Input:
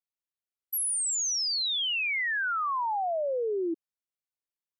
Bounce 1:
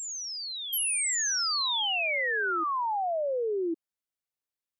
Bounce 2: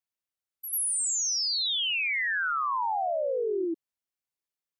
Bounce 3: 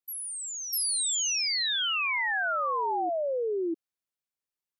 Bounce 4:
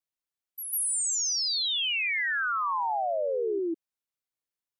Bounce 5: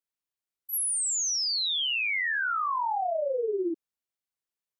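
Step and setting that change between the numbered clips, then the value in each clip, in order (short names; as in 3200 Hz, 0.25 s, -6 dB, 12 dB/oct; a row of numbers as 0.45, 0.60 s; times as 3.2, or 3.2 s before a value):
reverse echo, time: 1103, 93, 648, 148, 38 ms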